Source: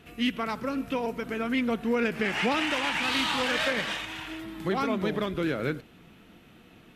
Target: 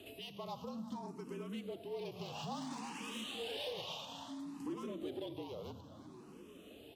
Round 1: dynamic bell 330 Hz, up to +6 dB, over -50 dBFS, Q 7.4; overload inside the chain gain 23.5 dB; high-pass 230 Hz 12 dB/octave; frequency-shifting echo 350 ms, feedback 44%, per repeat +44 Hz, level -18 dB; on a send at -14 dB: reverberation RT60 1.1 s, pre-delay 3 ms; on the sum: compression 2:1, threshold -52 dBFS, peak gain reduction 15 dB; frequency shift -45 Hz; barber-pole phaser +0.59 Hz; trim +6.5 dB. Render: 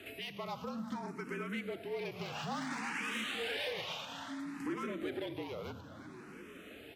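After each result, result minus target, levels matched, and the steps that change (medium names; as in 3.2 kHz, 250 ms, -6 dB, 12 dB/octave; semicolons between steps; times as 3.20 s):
2 kHz band +8.0 dB; compression: peak gain reduction -3 dB
add after high-pass: high-order bell 1.8 kHz -14.5 dB 1 oct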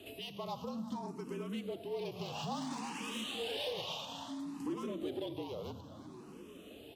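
compression: peak gain reduction -3.5 dB
change: compression 2:1, threshold -59 dBFS, peak gain reduction 18 dB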